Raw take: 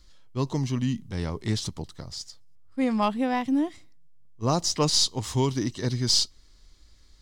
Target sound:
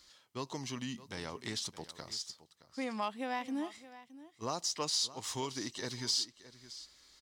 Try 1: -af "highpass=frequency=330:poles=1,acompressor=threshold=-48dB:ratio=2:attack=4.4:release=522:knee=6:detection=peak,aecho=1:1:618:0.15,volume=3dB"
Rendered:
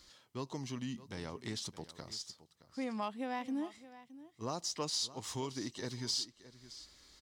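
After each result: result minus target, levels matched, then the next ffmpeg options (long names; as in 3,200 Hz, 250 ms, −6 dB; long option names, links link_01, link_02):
downward compressor: peak gain reduction +3.5 dB; 250 Hz band +3.0 dB
-af "highpass=frequency=330:poles=1,acompressor=threshold=-41.5dB:ratio=2:attack=4.4:release=522:knee=6:detection=peak,aecho=1:1:618:0.15,volume=3dB"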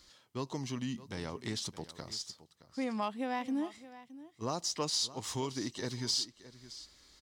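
250 Hz band +3.0 dB
-af "highpass=frequency=790:poles=1,acompressor=threshold=-41.5dB:ratio=2:attack=4.4:release=522:knee=6:detection=peak,aecho=1:1:618:0.15,volume=3dB"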